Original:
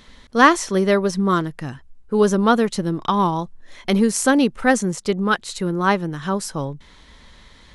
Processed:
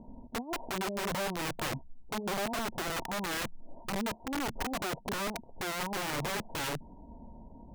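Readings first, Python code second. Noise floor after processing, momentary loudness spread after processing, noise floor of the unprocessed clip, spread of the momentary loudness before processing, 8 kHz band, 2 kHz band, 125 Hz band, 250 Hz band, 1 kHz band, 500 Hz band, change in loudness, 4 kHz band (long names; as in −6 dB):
−52 dBFS, 9 LU, −49 dBFS, 13 LU, −12.0 dB, −13.5 dB, −16.0 dB, −19.0 dB, −15.5 dB, −17.5 dB, −16.0 dB, −8.0 dB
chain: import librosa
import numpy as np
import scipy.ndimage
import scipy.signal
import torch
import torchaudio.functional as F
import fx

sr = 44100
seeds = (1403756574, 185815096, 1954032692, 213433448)

y = fx.over_compress(x, sr, threshold_db=-26.0, ratio=-1.0)
y = scipy.signal.sosfilt(scipy.signal.cheby1(6, 9, 960.0, 'lowpass', fs=sr, output='sos'), y)
y = (np.mod(10.0 ** (29.0 / 20.0) * y + 1.0, 2.0) - 1.0) / 10.0 ** (29.0 / 20.0)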